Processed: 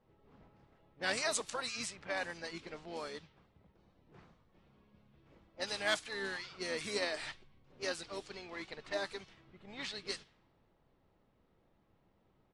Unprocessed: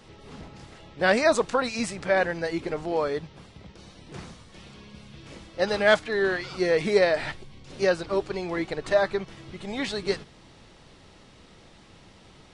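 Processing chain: level-controlled noise filter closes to 740 Hz, open at -21 dBFS; pre-emphasis filter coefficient 0.9; harmony voices -12 st -13 dB, -7 st -16 dB, +3 st -17 dB

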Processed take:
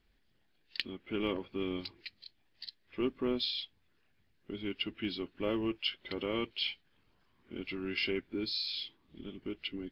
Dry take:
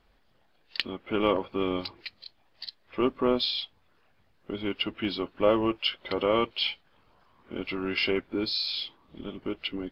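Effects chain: high-order bell 810 Hz -8.5 dB; trim -6 dB

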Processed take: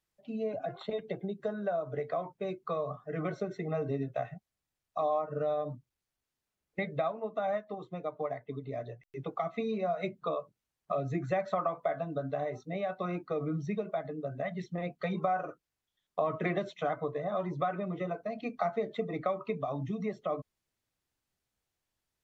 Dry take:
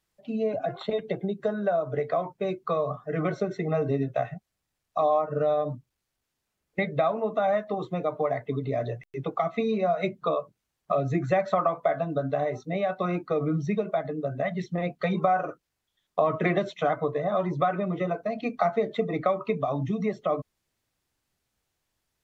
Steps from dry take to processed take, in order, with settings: 7.02–9.08 s: upward expansion 1.5:1, over -36 dBFS; trim -7 dB

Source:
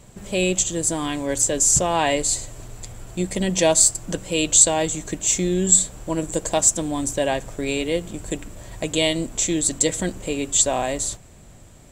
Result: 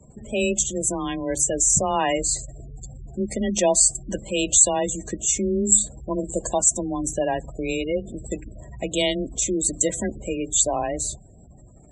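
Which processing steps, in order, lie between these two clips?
spectral gate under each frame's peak -20 dB strong; frequency shift +20 Hz; trim -1.5 dB

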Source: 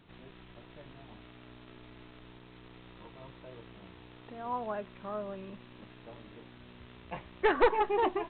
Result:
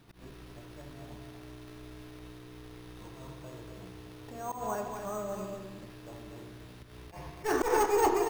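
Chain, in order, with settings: careless resampling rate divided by 6×, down none, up hold; on a send at -4 dB: reverberation RT60 1.0 s, pre-delay 3 ms; on the sum: slow attack 119 ms; delay 239 ms -6 dB

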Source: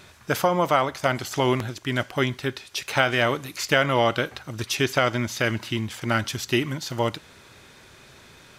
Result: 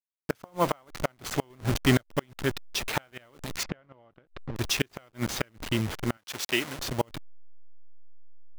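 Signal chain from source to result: send-on-delta sampling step -28.5 dBFS; 1.50–2.02 s: waveshaping leveller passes 2; 6.17–6.79 s: high-pass 700 Hz 6 dB/octave; inverted gate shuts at -10 dBFS, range -35 dB; 3.63–4.56 s: tape spacing loss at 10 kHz 35 dB

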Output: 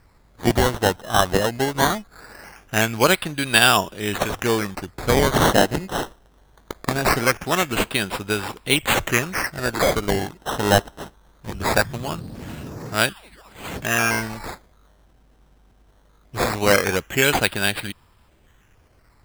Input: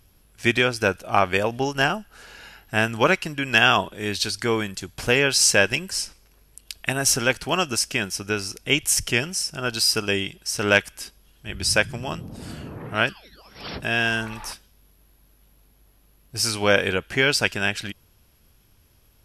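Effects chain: decimation with a swept rate 13×, swing 100% 0.21 Hz; trim +2 dB

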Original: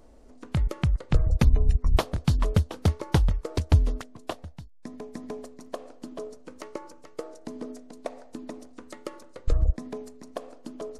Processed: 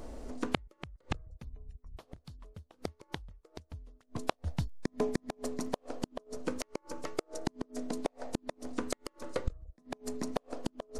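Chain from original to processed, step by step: inverted gate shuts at -26 dBFS, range -37 dB; trim +9.5 dB

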